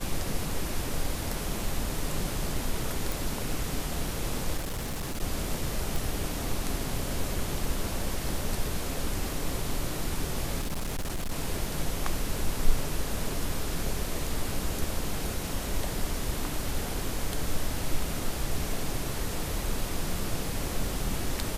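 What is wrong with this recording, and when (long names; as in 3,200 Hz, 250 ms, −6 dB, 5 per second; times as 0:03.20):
0:03.12: click
0:04.57–0:05.23: clipping −29 dBFS
0:05.96: click
0:10.60–0:11.32: clipping −27.5 dBFS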